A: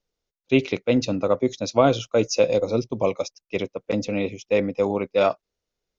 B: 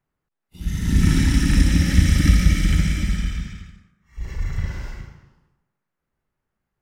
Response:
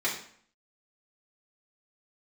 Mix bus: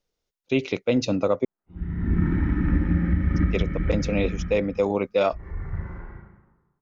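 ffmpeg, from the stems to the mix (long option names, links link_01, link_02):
-filter_complex "[0:a]volume=1.5dB,asplit=3[link_01][link_02][link_03];[link_01]atrim=end=1.45,asetpts=PTS-STARTPTS,afade=type=out:start_time=1.446:duration=0.004:curve=hsin[link_04];[link_02]atrim=start=1.45:end=3.32,asetpts=PTS-STARTPTS,volume=0[link_05];[link_03]atrim=start=3.32,asetpts=PTS-STARTPTS,afade=type=in:duration=0.004:curve=hsin[link_06];[link_04][link_05][link_06]concat=n=3:v=0:a=1[link_07];[1:a]lowpass=frequency=1400:width=0.5412,lowpass=frequency=1400:width=1.3066,aemphasis=mode=production:type=75fm,adelay=1150,volume=-7dB,asplit=2[link_08][link_09];[link_09]volume=-5dB[link_10];[2:a]atrim=start_sample=2205[link_11];[link_10][link_11]afir=irnorm=-1:irlink=0[link_12];[link_07][link_08][link_12]amix=inputs=3:normalize=0,alimiter=limit=-11dB:level=0:latency=1:release=254"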